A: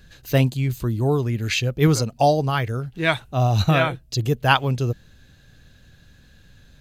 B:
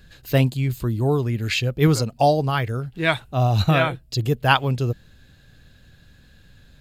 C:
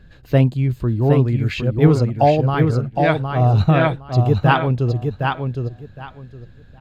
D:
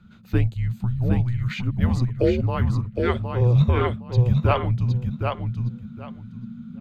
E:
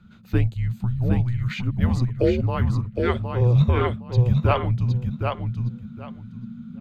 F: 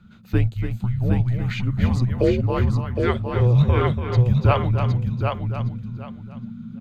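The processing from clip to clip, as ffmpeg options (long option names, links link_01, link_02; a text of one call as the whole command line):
ffmpeg -i in.wav -af "bandreject=frequency=6100:width=8.7" out.wav
ffmpeg -i in.wav -af "lowpass=frequency=1100:poles=1,aecho=1:1:763|1526|2289:0.562|0.107|0.0203,volume=4dB" out.wav
ffmpeg -i in.wav -af "asubboost=boost=6:cutoff=81,afreqshift=-240,volume=-5dB" out.wav
ffmpeg -i in.wav -af anull out.wav
ffmpeg -i in.wav -af "aecho=1:1:288:0.376,volume=1dB" out.wav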